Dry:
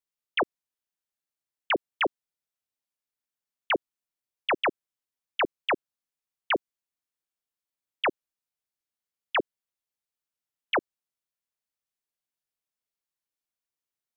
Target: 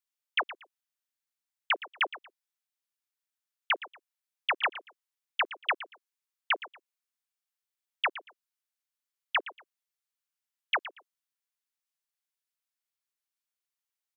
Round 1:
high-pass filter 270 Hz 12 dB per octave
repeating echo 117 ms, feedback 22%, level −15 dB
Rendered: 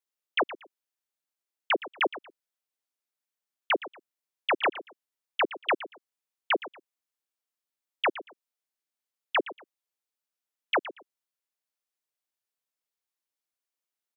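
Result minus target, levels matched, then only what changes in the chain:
250 Hz band +15.5 dB
change: high-pass filter 1,000 Hz 12 dB per octave

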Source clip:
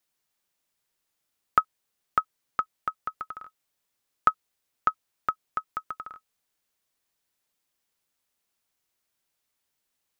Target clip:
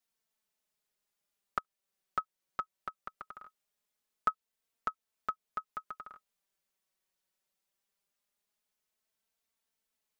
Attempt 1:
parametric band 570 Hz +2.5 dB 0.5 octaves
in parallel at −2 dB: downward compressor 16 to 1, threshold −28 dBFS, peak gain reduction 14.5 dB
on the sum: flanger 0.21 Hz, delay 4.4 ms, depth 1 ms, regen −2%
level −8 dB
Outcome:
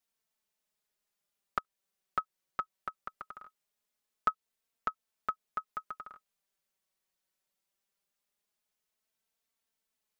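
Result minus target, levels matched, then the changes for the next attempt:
downward compressor: peak gain reduction −6.5 dB
change: downward compressor 16 to 1, threshold −35 dBFS, peak gain reduction 21 dB

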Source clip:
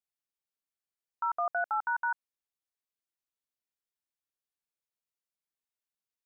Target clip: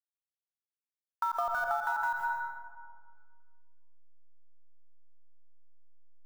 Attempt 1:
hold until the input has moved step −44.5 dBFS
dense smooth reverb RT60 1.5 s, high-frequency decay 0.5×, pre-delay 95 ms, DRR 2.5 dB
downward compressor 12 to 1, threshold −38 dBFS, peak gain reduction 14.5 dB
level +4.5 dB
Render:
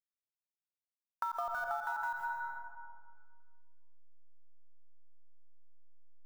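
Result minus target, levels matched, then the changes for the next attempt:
downward compressor: peak gain reduction +5.5 dB
change: downward compressor 12 to 1, threshold −32 dBFS, peak gain reduction 9 dB

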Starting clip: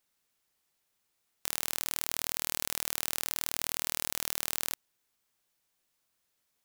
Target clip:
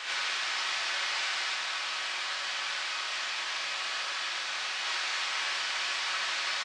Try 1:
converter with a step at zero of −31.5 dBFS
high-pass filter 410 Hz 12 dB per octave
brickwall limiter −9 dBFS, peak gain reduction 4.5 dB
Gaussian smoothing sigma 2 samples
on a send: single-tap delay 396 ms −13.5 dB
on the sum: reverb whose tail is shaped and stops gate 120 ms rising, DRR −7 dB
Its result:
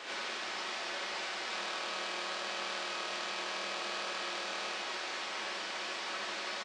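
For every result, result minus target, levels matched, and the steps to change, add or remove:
500 Hz band +11.5 dB; converter with a step at zero: distortion −8 dB
change: high-pass filter 1,200 Hz 12 dB per octave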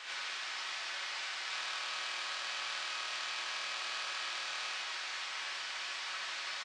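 converter with a step at zero: distortion −8 dB
change: converter with a step at zero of −23 dBFS

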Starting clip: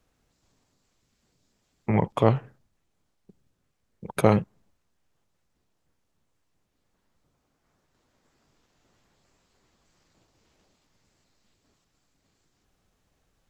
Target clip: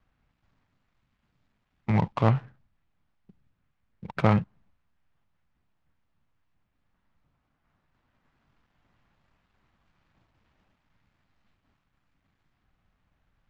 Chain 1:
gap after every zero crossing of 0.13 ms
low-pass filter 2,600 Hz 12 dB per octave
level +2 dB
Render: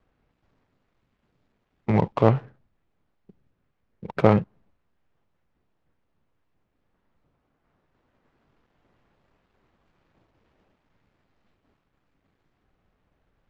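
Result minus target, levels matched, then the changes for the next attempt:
500 Hz band +5.5 dB
add after low-pass filter: parametric band 430 Hz −10.5 dB 1.3 octaves

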